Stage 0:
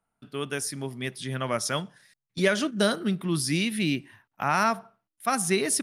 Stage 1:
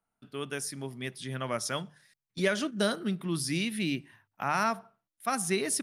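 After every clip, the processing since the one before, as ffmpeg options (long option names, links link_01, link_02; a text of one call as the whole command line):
ffmpeg -i in.wav -af "bandreject=frequency=50:width_type=h:width=6,bandreject=frequency=100:width_type=h:width=6,bandreject=frequency=150:width_type=h:width=6,volume=-4.5dB" out.wav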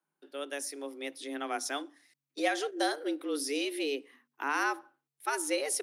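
ffmpeg -i in.wav -af "acontrast=36,afreqshift=140,volume=-7.5dB" out.wav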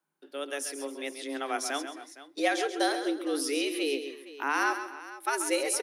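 ffmpeg -i in.wav -af "aecho=1:1:135|138|266|462:0.316|0.112|0.106|0.15,volume=2.5dB" out.wav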